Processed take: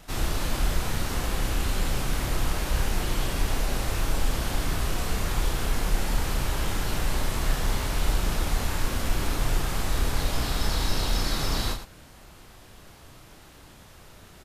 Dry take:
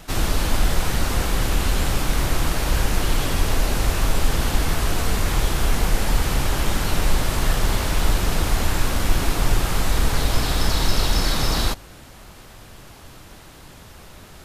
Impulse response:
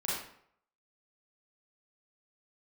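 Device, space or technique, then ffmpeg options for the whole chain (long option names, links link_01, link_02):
slapback doubling: -filter_complex "[0:a]asplit=3[link_01][link_02][link_03];[link_02]adelay=32,volume=-5dB[link_04];[link_03]adelay=108,volume=-10dB[link_05];[link_01][link_04][link_05]amix=inputs=3:normalize=0,volume=-7.5dB"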